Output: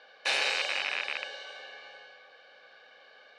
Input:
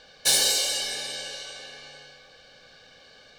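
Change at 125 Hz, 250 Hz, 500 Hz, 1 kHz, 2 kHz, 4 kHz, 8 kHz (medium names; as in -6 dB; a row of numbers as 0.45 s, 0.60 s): under -15 dB, -10.5 dB, -3.5 dB, +2.0 dB, +4.0 dB, -7.5 dB, -19.5 dB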